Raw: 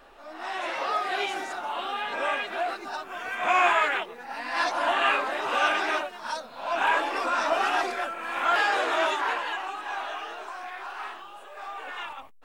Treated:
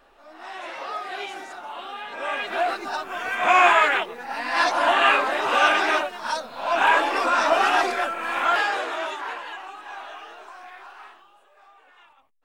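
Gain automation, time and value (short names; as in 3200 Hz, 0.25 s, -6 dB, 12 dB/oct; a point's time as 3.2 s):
2.15 s -4 dB
2.56 s +5.5 dB
8.3 s +5.5 dB
9.01 s -4.5 dB
10.75 s -4.5 dB
11.88 s -17.5 dB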